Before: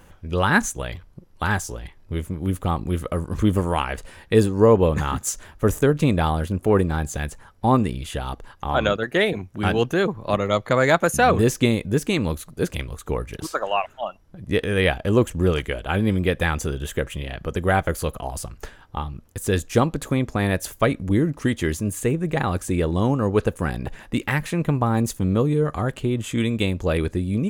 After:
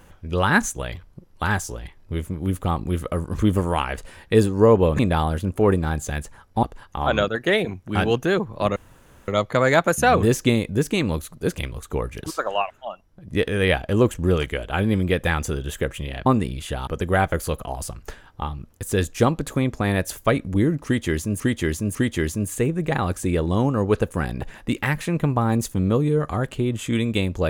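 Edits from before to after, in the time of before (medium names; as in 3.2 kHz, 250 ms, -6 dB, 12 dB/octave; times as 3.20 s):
4.99–6.06 s: delete
7.70–8.31 s: move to 17.42 s
10.44 s: insert room tone 0.52 s
13.78–14.44 s: gain -4 dB
21.40–21.95 s: loop, 3 plays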